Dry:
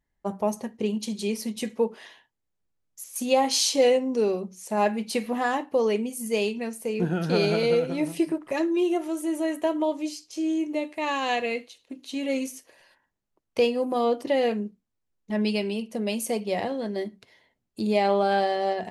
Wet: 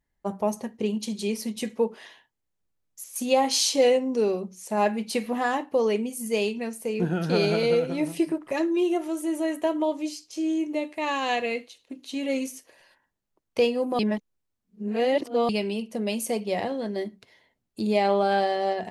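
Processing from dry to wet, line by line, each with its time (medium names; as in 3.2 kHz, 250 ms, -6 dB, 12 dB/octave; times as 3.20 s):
13.99–15.49 s: reverse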